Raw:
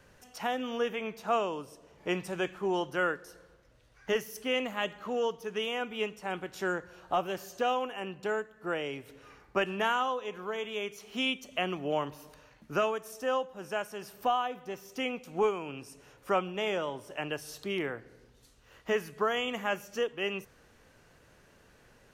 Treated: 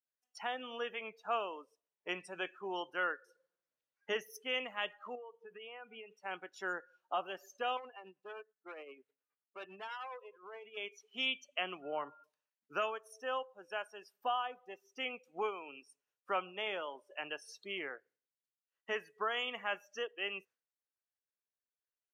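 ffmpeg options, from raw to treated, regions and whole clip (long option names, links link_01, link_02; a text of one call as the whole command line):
ffmpeg -i in.wav -filter_complex "[0:a]asettb=1/sr,asplit=3[link_01][link_02][link_03];[link_01]atrim=end=3.254[link_04];[link_02]atrim=start=3.25:end=4.38,asetpts=PTS-STARTPTS,afade=type=in:duration=0.004:curve=qsin,afade=type=out:start_time=1.126:duration=0.004:curve=qsin,highpass=120,acompressor=mode=upward:threshold=-49dB:ratio=2.5:attack=3.2:release=140:knee=2.83:detection=peak,equalizer=frequency=180:width=0.36:gain=4[link_05];[link_03]atrim=start=4.376[link_06];[link_04][link_05]acrossfade=duration=0.004:curve1=hsin:curve2=qsin[link_07];[link_07][link_06]acrossfade=duration=0.004:curve1=qsin:curve2=hsin,asettb=1/sr,asplit=3[link_08][link_09][link_10];[link_08]atrim=end=5.154[link_11];[link_09]atrim=start=5.15:end=6.11,asetpts=PTS-STARTPTS,afade=type=in:duration=0.004:curve=qsin,afade=type=out:start_time=0.956:duration=0.004:curve=qsin,lowpass=2200,acompressor=threshold=-36dB:ratio=16:attack=3.2:release=140:knee=1:detection=peak[link_12];[link_10]atrim=start=6.106[link_13];[link_11][link_12]acrossfade=duration=0.004:curve1=hsin:curve2=qsin[link_14];[link_14][link_13]acrossfade=duration=0.004:curve1=qsin:curve2=hsin,asettb=1/sr,asplit=3[link_15][link_16][link_17];[link_15]atrim=end=7.774[link_18];[link_16]atrim=start=7.77:end=10.77,asetpts=PTS-STARTPTS,afade=type=in:duration=0.004:curve=qsin,afade=type=out:start_time=2.996:duration=0.004:curve=qsin,equalizer=frequency=9300:width_type=o:width=2.8:gain=-11,tremolo=f=9.7:d=0.54,asoftclip=type=hard:threshold=-35.5dB[link_19];[link_17]atrim=start=10.766[link_20];[link_18][link_19]acrossfade=duration=0.004:curve1=hsin:curve2=qsin[link_21];[link_21][link_20]acrossfade=duration=0.004:curve1=qsin:curve2=hsin,asettb=1/sr,asplit=3[link_22][link_23][link_24];[link_22]atrim=end=11.824[link_25];[link_23]atrim=start=11.82:end=12.24,asetpts=PTS-STARTPTS,afade=type=in:duration=0.004:curve=qsin,afade=type=out:start_time=0.416:duration=0.004:curve=qsin,lowpass=frequency=2500:width=0.5412,lowpass=frequency=2500:width=1.3066,aeval=exprs='val(0)+0.00224*sin(2*PI*1400*n/s)':channel_layout=same[link_26];[link_24]atrim=start=12.236[link_27];[link_25][link_26]acrossfade=duration=0.004:curve1=hsin:curve2=qsin[link_28];[link_28][link_27]acrossfade=duration=0.004:curve1=qsin:curve2=hsin,agate=range=-33dB:threshold=-49dB:ratio=3:detection=peak,highpass=frequency=1000:poles=1,afftdn=noise_reduction=23:noise_floor=-45,volume=-2.5dB" out.wav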